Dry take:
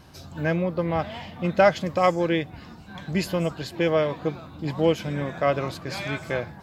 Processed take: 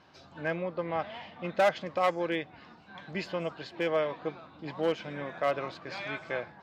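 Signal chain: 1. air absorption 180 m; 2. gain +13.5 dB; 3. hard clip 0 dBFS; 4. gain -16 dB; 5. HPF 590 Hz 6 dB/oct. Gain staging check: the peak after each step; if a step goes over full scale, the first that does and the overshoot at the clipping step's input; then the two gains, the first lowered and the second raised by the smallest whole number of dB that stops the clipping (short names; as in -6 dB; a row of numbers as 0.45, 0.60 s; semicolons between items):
-6.5, +7.0, 0.0, -16.0, -13.0 dBFS; step 2, 7.0 dB; step 2 +6.5 dB, step 4 -9 dB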